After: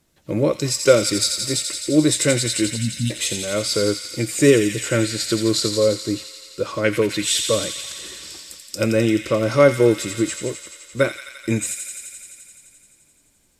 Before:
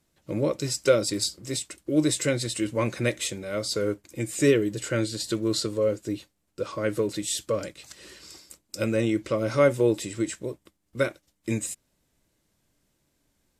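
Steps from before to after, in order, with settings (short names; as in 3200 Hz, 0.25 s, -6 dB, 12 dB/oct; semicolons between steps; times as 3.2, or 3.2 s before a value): 2.76–3.1 spectral delete 280–2600 Hz; 6.84–7.47 bell 2500 Hz +8.5 dB 1.2 oct; thin delay 86 ms, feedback 81%, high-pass 2300 Hz, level -5 dB; gain +6.5 dB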